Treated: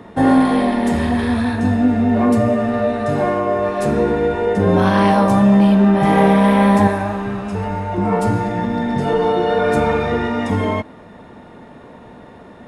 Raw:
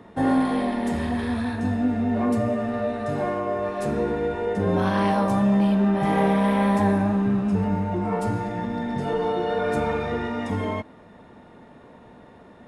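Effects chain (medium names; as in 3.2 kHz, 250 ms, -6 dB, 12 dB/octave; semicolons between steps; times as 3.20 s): 6.87–7.98 s: peaking EQ 200 Hz -11.5 dB 1.8 oct; trim +8 dB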